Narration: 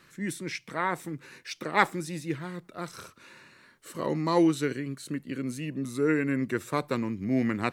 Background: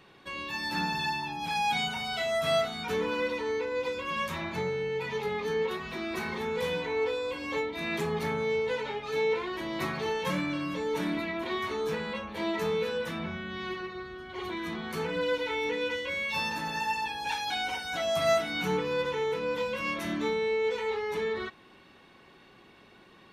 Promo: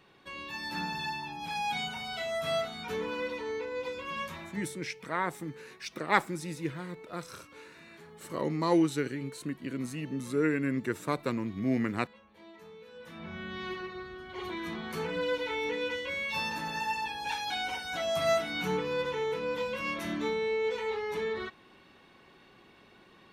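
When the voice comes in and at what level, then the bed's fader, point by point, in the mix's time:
4.35 s, -2.5 dB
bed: 4.21 s -4.5 dB
4.99 s -21.5 dB
12.84 s -21.5 dB
13.42 s -2 dB

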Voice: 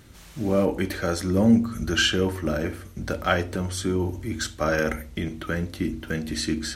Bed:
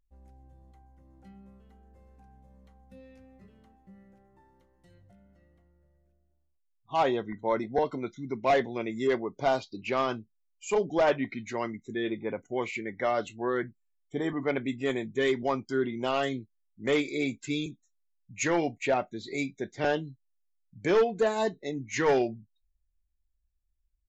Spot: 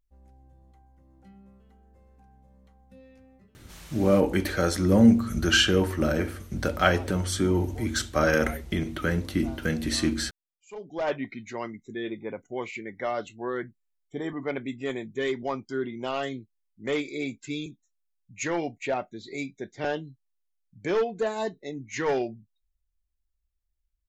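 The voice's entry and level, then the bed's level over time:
3.55 s, +1.0 dB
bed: 3.35 s -0.5 dB
3.9 s -19.5 dB
10.6 s -19.5 dB
11.13 s -2 dB

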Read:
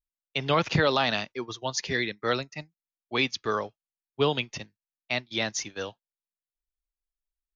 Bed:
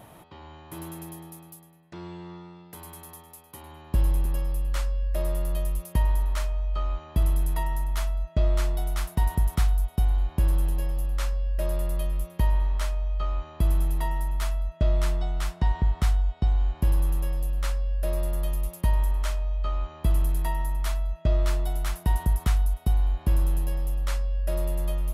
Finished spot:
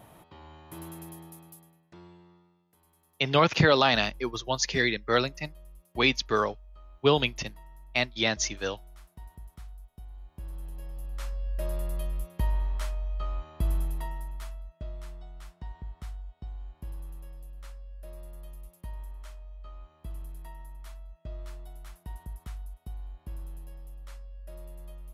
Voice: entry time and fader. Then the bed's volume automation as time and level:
2.85 s, +2.5 dB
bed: 1.67 s -4 dB
2.66 s -23 dB
10.07 s -23 dB
11.51 s -5 dB
13.76 s -5 dB
14.96 s -17.5 dB

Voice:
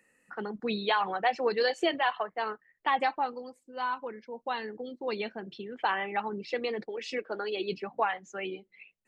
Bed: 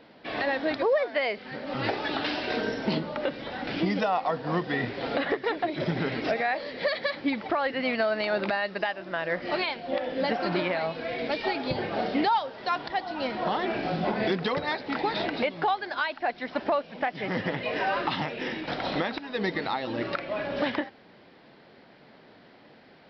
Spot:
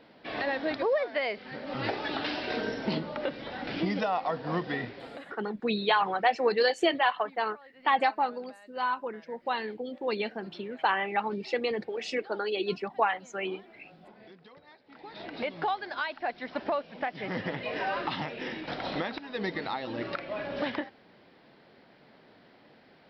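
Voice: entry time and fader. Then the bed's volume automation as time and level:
5.00 s, +2.5 dB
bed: 4.71 s -3 dB
5.55 s -26 dB
14.84 s -26 dB
15.5 s -4 dB

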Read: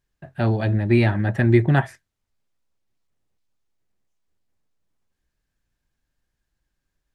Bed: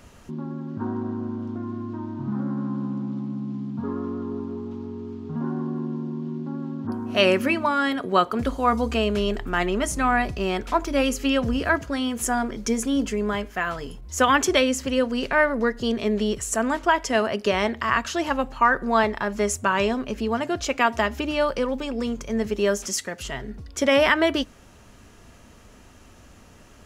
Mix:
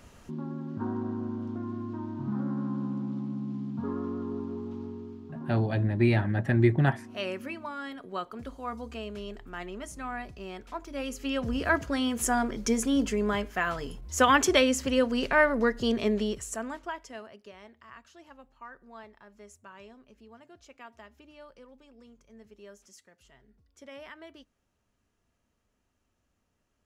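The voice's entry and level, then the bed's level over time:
5.10 s, -6.0 dB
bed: 4.84 s -4 dB
5.67 s -15.5 dB
10.84 s -15.5 dB
11.8 s -2.5 dB
16.06 s -2.5 dB
17.54 s -27.5 dB

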